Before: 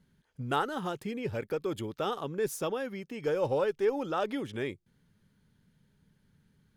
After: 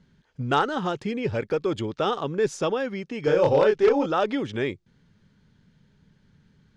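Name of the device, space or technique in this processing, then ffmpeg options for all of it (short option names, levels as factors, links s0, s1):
synthesiser wavefolder: -filter_complex "[0:a]asettb=1/sr,asplit=3[s0][s1][s2];[s0]atrim=end=3.244[s3];[s1]atrim=start=3.24:end=4.06,asetpts=PTS-STARTPTS,afade=t=in:d=0.004:c=qsin,afade=t=out:st=0.816:d=0.004:c=qsin,asplit=2[s4][s5];[s5]adelay=28,volume=0.75[s6];[s4][s6]amix=inputs=2:normalize=0,atrim=end_sample=36162[s7];[s2]atrim=start=4.056[s8];[s3][s7]acrossfade=d=0.004:c1=hsin:c2=qsin[s9];[s9][s8]acrossfade=d=0.004:c1=qsin:c2=hsin,aeval=exprs='0.119*(abs(mod(val(0)/0.119+3,4)-2)-1)':c=same,lowpass=f=6700:w=0.5412,lowpass=f=6700:w=1.3066,volume=2.37"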